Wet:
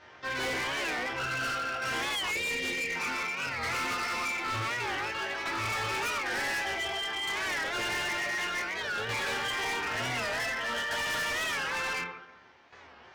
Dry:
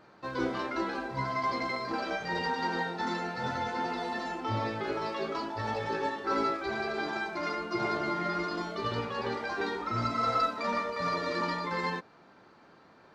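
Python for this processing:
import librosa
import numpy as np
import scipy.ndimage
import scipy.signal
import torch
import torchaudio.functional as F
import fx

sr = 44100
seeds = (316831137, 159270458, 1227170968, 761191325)

y = fx.envelope_flatten(x, sr, power=0.6)
y = fx.hum_notches(y, sr, base_hz=60, count=2)
y = fx.rev_fdn(y, sr, rt60_s=0.98, lf_ratio=0.95, hf_ratio=0.45, size_ms=77.0, drr_db=-5.0)
y = fx.formant_shift(y, sr, semitones=5)
y = scipy.signal.sosfilt(scipy.signal.butter(4, 5000.0, 'lowpass', fs=sr, output='sos'), y)
y = fx.peak_eq(y, sr, hz=210.0, db=-15.0, octaves=0.43)
y = fx.spec_erase(y, sr, start_s=2.32, length_s=0.64, low_hz=610.0, high_hz=1800.0)
y = fx.dynamic_eq(y, sr, hz=2200.0, q=1.9, threshold_db=-40.0, ratio=4.0, max_db=6)
y = fx.tremolo_shape(y, sr, shape='saw_down', hz=0.55, depth_pct=60)
y = np.clip(10.0 ** (30.0 / 20.0) * y, -1.0, 1.0) / 10.0 ** (30.0 / 20.0)
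y = fx.record_warp(y, sr, rpm=45.0, depth_cents=160.0)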